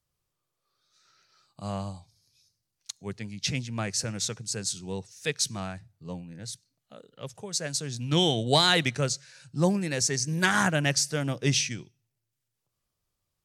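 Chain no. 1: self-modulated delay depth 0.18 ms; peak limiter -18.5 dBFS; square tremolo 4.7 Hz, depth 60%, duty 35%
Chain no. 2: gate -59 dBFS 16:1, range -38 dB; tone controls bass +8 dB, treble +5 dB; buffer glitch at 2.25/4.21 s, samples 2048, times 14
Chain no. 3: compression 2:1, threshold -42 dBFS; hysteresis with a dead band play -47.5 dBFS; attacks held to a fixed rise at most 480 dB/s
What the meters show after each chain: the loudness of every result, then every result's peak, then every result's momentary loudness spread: -35.0 LUFS, -23.0 LUFS, -39.0 LUFS; -18.5 dBFS, -6.0 dBFS, -21.5 dBFS; 14 LU, 16 LU, 13 LU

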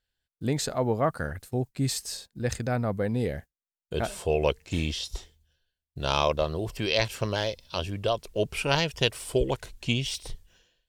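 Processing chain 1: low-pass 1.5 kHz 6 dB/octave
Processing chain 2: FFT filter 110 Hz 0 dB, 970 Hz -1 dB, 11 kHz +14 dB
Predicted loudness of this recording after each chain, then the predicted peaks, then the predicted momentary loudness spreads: -30.0 LUFS, -25.5 LUFS; -12.0 dBFS, -2.0 dBFS; 10 LU, 10 LU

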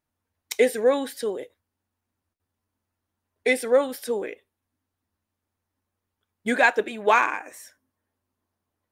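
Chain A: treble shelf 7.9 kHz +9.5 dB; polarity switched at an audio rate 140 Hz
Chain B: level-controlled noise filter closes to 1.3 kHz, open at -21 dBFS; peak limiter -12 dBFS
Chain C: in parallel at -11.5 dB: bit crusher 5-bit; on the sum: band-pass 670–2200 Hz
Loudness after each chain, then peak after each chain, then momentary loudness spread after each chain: -23.0 LUFS, -25.5 LUFS, -24.5 LUFS; -4.0 dBFS, -12.0 dBFS, -5.0 dBFS; 14 LU, 13 LU, 17 LU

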